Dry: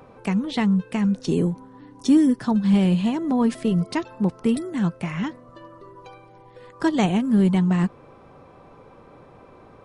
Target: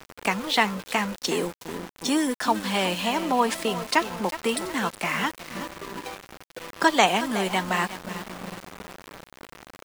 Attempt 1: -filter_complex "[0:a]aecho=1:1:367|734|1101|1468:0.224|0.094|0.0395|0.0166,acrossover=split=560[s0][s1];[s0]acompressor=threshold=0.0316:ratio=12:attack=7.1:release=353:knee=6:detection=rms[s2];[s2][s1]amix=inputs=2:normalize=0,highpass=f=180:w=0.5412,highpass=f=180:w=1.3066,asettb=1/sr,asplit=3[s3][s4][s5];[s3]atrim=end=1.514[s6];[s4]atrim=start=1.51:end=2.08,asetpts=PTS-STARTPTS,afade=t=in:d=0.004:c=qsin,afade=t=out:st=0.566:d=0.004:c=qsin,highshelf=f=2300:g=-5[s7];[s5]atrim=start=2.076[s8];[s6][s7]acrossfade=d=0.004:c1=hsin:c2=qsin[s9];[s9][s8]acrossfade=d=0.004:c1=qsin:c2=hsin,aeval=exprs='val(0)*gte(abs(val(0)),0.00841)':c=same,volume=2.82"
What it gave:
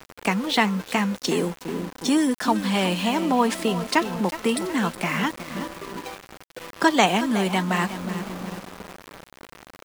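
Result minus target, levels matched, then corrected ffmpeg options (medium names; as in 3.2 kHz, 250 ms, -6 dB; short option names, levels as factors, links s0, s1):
compression: peak gain reduction -7 dB
-filter_complex "[0:a]aecho=1:1:367|734|1101|1468:0.224|0.094|0.0395|0.0166,acrossover=split=560[s0][s1];[s0]acompressor=threshold=0.0133:ratio=12:attack=7.1:release=353:knee=6:detection=rms[s2];[s2][s1]amix=inputs=2:normalize=0,highpass=f=180:w=0.5412,highpass=f=180:w=1.3066,asettb=1/sr,asplit=3[s3][s4][s5];[s3]atrim=end=1.514[s6];[s4]atrim=start=1.51:end=2.08,asetpts=PTS-STARTPTS,afade=t=in:d=0.004:c=qsin,afade=t=out:st=0.566:d=0.004:c=qsin,highshelf=f=2300:g=-5[s7];[s5]atrim=start=2.076[s8];[s6][s7]acrossfade=d=0.004:c1=hsin:c2=qsin[s9];[s9][s8]acrossfade=d=0.004:c1=qsin:c2=hsin,aeval=exprs='val(0)*gte(abs(val(0)),0.00841)':c=same,volume=2.82"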